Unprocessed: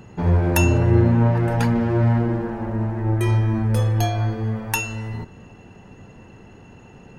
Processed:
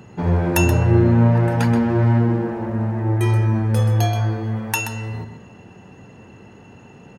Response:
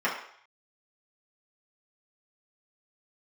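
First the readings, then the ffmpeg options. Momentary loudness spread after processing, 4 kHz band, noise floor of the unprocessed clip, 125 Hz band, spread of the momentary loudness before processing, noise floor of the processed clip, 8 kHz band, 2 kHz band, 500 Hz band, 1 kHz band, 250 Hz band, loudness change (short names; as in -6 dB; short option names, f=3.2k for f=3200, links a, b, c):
10 LU, +1.5 dB, -46 dBFS, +1.5 dB, 10 LU, -45 dBFS, +1.5 dB, +1.5 dB, +1.5 dB, +1.5 dB, +2.0 dB, +1.5 dB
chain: -filter_complex "[0:a]highpass=83,asplit=2[a][b];[b]adelay=128.3,volume=-8dB,highshelf=f=4k:g=-2.89[c];[a][c]amix=inputs=2:normalize=0,volume=1dB"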